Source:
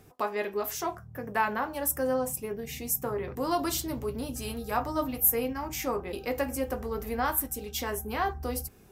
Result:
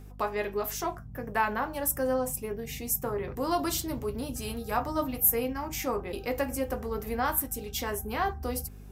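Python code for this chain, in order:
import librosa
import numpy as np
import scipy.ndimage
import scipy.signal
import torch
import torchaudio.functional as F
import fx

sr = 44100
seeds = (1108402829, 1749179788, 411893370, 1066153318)

y = fx.add_hum(x, sr, base_hz=50, snr_db=15)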